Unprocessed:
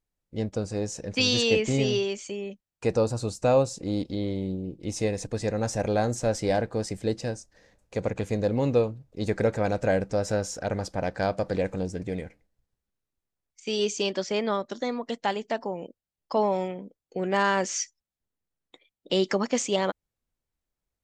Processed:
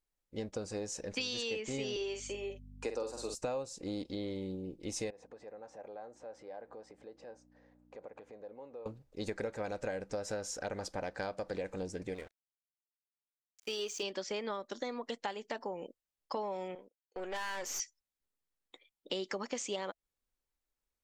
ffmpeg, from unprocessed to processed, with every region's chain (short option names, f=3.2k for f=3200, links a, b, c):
-filter_complex "[0:a]asettb=1/sr,asplit=3[a][b][c];[a]atrim=end=1.964[d];[b]atrim=start=1.96:end=3.35,asetpts=PTS-STARTPTS,afade=t=in:d=0.004:c=qsin,afade=t=out:st=1.386:d=0.004:c=qsin,highpass=f=260:w=0.5412,highpass=f=260:w=1.3066,aeval=exprs='val(0)+0.00891*(sin(2*PI*50*n/s)+sin(2*PI*2*50*n/s)/2+sin(2*PI*3*50*n/s)/3+sin(2*PI*4*50*n/s)/4+sin(2*PI*5*50*n/s)/5)':c=same,asplit=2[e][f];[f]adelay=48,volume=-7dB[g];[e][g]amix=inputs=2:normalize=0,atrim=end_sample=61299[h];[c]atrim=start=3.346[i];[d][h]acrossfade=d=0.004:c1=hsin:c2=qsin[j];[j][i]acrossfade=d=0.004:c1=qsin:c2=hsin,asettb=1/sr,asplit=3[k][l][m];[k]atrim=end=5.104[n];[l]atrim=start=5.1:end=8.86,asetpts=PTS-STARTPTS,afade=t=in:d=0.004:c=qsin,afade=t=out:st=3.756:d=0.004:c=qsin,aeval=exprs='val(0)+0.01*(sin(2*PI*60*n/s)+sin(2*PI*2*60*n/s)/2+sin(2*PI*3*60*n/s)/3+sin(2*PI*4*60*n/s)/4+sin(2*PI*5*60*n/s)/5)':c=same,acompressor=threshold=-35dB:ratio=12:attack=3.2:release=140:knee=1:detection=peak,bandpass=f=720:t=q:w=1.1[o];[m]atrim=start=8.856[p];[n][o]acrossfade=d=0.004:c1=hsin:c2=qsin[q];[q][p]acrossfade=d=0.004:c1=qsin:c2=hsin,asettb=1/sr,asplit=3[r][s][t];[r]atrim=end=12.144[u];[s]atrim=start=12.14:end=14.03,asetpts=PTS-STARTPTS,afade=t=in:d=0.004:c=qsin,afade=t=out:st=1.886:d=0.004:c=qsin,equalizer=f=180:t=o:w=0.9:g=-7.5,aeval=exprs='sgn(val(0))*max(abs(val(0))-0.00501,0)':c=same[v];[t]atrim=start=14.026[w];[u][v]acrossfade=d=0.004:c1=hsin:c2=qsin[x];[x][w]acrossfade=d=0.004:c1=qsin:c2=hsin,asettb=1/sr,asplit=3[y][z][aa];[y]atrim=end=16.754[ab];[z]atrim=start=16.75:end=17.8,asetpts=PTS-STARTPTS,afade=t=in:d=0.004:c=qsin,afade=t=out:st=1.046:d=0.004:c=qsin,agate=range=-15dB:threshold=-44dB:ratio=16:release=100:detection=peak,highpass=430,aeval=exprs='(tanh(25.1*val(0)+0.55)-tanh(0.55))/25.1':c=same[ac];[aa]atrim=start=17.796[ad];[ab][ac]acrossfade=d=0.004:c1=hsin:c2=qsin[ae];[ae][ad]acrossfade=d=0.004:c1=qsin:c2=hsin,equalizer=f=120:t=o:w=2:g=-10,bandreject=f=670:w=12,acompressor=threshold=-32dB:ratio=6,volume=-2.5dB"